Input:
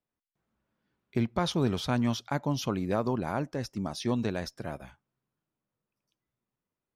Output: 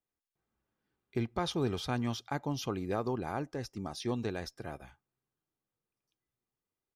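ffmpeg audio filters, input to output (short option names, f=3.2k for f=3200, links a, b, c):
-af "aecho=1:1:2.5:0.33,volume=-4.5dB"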